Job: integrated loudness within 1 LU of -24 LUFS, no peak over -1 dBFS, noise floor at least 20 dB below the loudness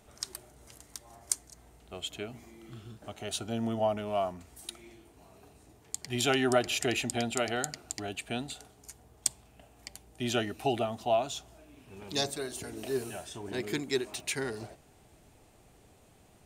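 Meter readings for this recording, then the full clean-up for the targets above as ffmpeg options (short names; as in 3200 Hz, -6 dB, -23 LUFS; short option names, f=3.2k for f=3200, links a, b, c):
loudness -33.0 LUFS; peak -8.0 dBFS; loudness target -24.0 LUFS
-> -af "volume=9dB,alimiter=limit=-1dB:level=0:latency=1"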